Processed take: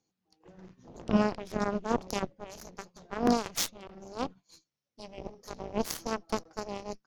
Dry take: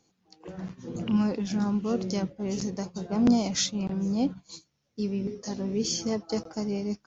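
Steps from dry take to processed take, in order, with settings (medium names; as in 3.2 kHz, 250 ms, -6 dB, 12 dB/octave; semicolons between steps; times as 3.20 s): 2.44–5.18 s: bass shelf 210 Hz -8.5 dB; Chebyshev shaper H 6 -21 dB, 7 -15 dB, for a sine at -11.5 dBFS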